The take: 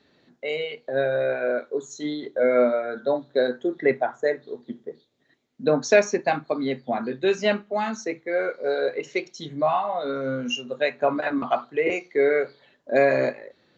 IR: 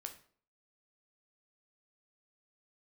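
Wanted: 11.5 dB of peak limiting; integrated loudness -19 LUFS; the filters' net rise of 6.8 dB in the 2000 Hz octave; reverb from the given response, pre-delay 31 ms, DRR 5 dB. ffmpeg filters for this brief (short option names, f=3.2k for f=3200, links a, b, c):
-filter_complex "[0:a]equalizer=f=2k:t=o:g=8.5,alimiter=limit=-13.5dB:level=0:latency=1,asplit=2[a][b];[1:a]atrim=start_sample=2205,adelay=31[c];[b][c]afir=irnorm=-1:irlink=0,volume=-1.5dB[d];[a][d]amix=inputs=2:normalize=0,volume=5.5dB"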